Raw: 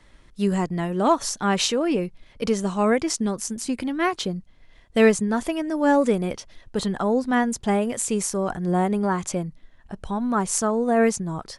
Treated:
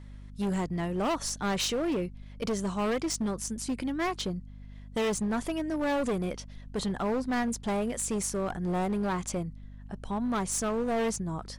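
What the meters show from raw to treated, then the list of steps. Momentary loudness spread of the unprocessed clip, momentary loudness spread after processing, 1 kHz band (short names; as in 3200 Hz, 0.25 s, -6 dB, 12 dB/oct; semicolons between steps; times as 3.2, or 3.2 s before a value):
11 LU, 9 LU, -8.5 dB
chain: hum 50 Hz, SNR 17 dB; overloaded stage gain 20.5 dB; gain -5 dB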